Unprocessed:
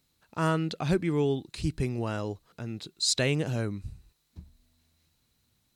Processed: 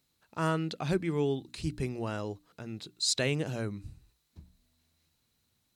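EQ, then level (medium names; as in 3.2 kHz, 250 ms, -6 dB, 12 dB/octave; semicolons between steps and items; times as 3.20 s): bass shelf 77 Hz -5 dB; hum notches 60/120/180/240/300 Hz; -2.5 dB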